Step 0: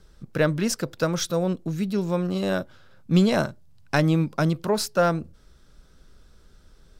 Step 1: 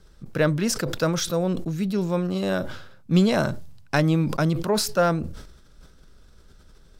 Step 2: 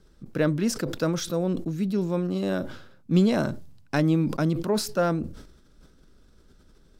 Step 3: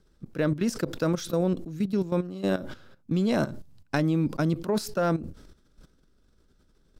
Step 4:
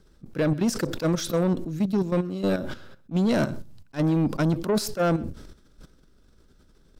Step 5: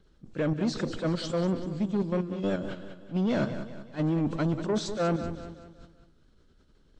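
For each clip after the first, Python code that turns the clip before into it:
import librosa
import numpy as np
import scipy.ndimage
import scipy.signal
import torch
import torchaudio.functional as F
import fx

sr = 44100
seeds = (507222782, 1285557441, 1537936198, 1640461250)

y1 = fx.sustainer(x, sr, db_per_s=61.0)
y2 = fx.peak_eq(y1, sr, hz=280.0, db=7.5, octaves=1.2)
y2 = F.gain(torch.from_numpy(y2), -5.5).numpy()
y3 = fx.level_steps(y2, sr, step_db=13)
y3 = F.gain(torch.from_numpy(y3), 2.5).numpy()
y4 = 10.0 ** (-23.0 / 20.0) * np.tanh(y3 / 10.0 ** (-23.0 / 20.0))
y4 = y4 + 10.0 ** (-23.0 / 20.0) * np.pad(y4, (int(127 * sr / 1000.0), 0))[:len(y4)]
y4 = fx.attack_slew(y4, sr, db_per_s=380.0)
y4 = F.gain(torch.from_numpy(y4), 6.0).numpy()
y5 = fx.freq_compress(y4, sr, knee_hz=2400.0, ratio=1.5)
y5 = fx.vibrato(y5, sr, rate_hz=6.1, depth_cents=45.0)
y5 = fx.echo_feedback(y5, sr, ms=190, feedback_pct=45, wet_db=-11.0)
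y5 = F.gain(torch.from_numpy(y5), -4.5).numpy()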